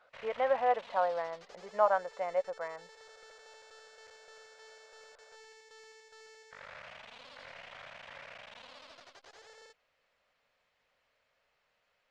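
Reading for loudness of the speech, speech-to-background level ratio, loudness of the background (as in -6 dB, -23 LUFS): -32.5 LUFS, 20.0 dB, -52.5 LUFS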